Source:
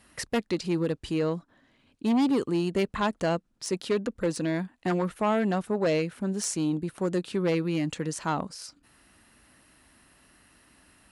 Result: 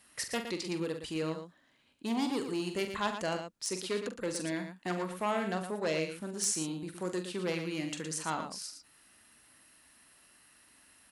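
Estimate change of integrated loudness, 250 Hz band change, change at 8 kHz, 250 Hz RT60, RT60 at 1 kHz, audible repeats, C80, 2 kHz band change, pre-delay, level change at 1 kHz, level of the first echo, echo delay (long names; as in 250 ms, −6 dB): −6.5 dB, −9.0 dB, +1.0 dB, no reverb audible, no reverb audible, 2, no reverb audible, −3.0 dB, no reverb audible, −5.0 dB, −8.5 dB, 44 ms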